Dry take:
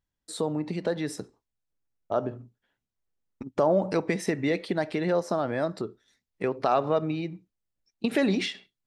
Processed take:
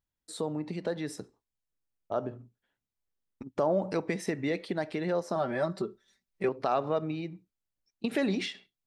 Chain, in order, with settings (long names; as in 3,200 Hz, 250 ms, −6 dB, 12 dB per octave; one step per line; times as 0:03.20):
0:05.35–0:06.49: comb filter 5.2 ms, depth 97%
level −4.5 dB